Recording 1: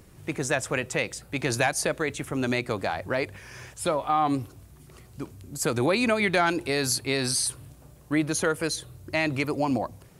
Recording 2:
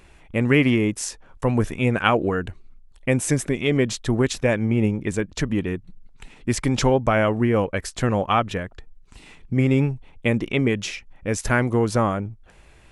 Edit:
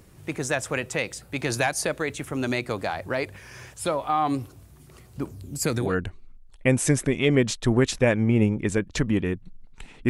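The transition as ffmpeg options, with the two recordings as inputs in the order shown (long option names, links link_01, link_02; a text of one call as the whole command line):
ffmpeg -i cue0.wav -i cue1.wav -filter_complex "[0:a]asettb=1/sr,asplit=3[link_01][link_02][link_03];[link_01]atrim=end=5.164[link_04];[link_02]atrim=start=5.16:end=5.95,asetpts=PTS-STARTPTS,afade=type=in:duration=0.004:curve=qsin,afade=type=out:start_time=0.786:duration=0.004:curve=qsin,aphaser=in_gain=1:out_gain=1:delay=1.5:decay=0.46:speed=0.29:type=triangular[link_05];[link_03]atrim=start=5.946[link_06];[link_04][link_05]acrossfade=duration=0.004:curve1=hsin:curve2=qsin[link_07];[link_07][link_06]acrossfade=duration=0.004:curve1=qsin:curve2=hsin,apad=whole_dur=10.09,atrim=end=10.09,atrim=end=5.95,asetpts=PTS-STARTPTS[link_08];[1:a]atrim=start=2.17:end=6.51,asetpts=PTS-STARTPTS[link_09];[link_08][link_09]acrossfade=duration=0.2:curve1=tri:curve2=tri" out.wav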